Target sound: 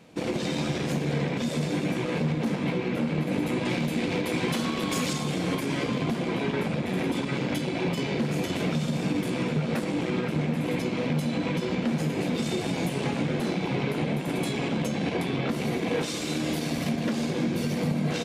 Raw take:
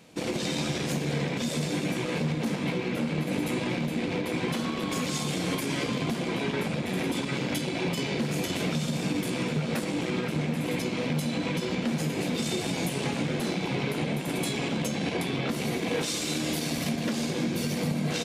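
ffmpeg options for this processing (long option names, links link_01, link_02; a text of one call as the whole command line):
ffmpeg -i in.wav -af "asetnsamples=nb_out_samples=441:pad=0,asendcmd='3.65 highshelf g 2;5.13 highshelf g -8',highshelf=frequency=3300:gain=-8,volume=2dB" out.wav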